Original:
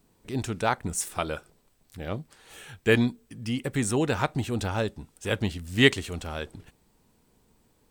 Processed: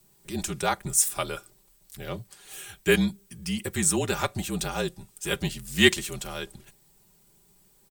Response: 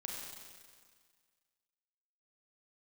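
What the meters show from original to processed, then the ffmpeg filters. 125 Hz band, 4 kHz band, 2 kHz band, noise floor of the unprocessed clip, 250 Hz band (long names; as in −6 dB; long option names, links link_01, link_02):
−3.5 dB, +3.0 dB, +0.5 dB, −66 dBFS, −1.0 dB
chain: -af "aecho=1:1:4.8:0.63,afreqshift=-42,crystalizer=i=2.5:c=0,volume=-3dB"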